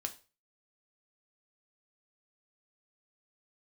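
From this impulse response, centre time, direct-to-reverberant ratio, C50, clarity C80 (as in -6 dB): 6 ms, 5.0 dB, 15.5 dB, 21.0 dB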